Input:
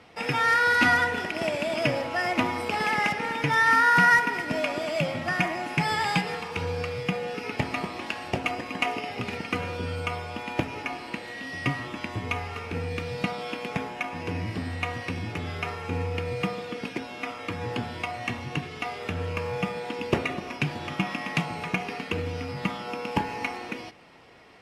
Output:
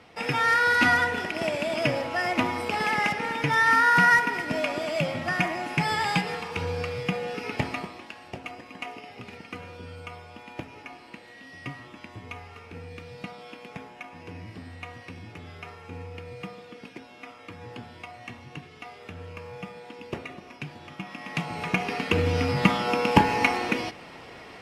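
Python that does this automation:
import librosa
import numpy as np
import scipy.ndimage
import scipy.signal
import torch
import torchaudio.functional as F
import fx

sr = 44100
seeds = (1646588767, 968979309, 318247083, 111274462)

y = fx.gain(x, sr, db=fx.line((7.66, 0.0), (8.08, -10.0), (21.04, -10.0), (21.6, 1.0), (22.42, 8.5)))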